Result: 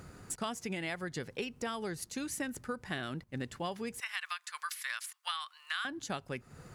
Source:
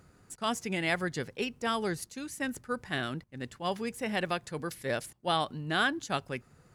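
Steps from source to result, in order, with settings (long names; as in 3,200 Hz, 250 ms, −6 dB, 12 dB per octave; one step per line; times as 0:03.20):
0:04.00–0:05.85: elliptic high-pass filter 1,100 Hz, stop band 80 dB
downward compressor 10 to 1, threshold −43 dBFS, peak gain reduction 19 dB
level +8.5 dB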